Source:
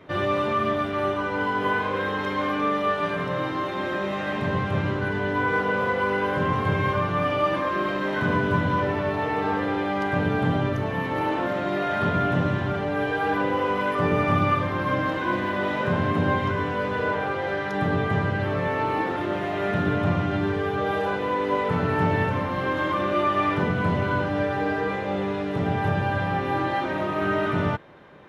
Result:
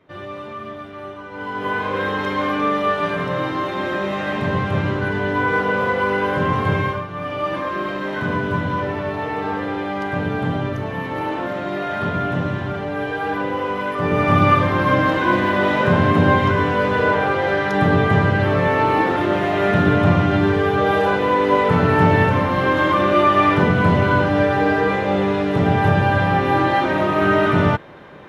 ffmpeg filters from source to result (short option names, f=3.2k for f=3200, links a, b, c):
-af "volume=19dB,afade=t=in:st=1.29:d=0.74:silence=0.223872,afade=t=out:st=6.77:d=0.3:silence=0.281838,afade=t=in:st=7.07:d=0.51:silence=0.421697,afade=t=in:st=13.99:d=0.51:silence=0.446684"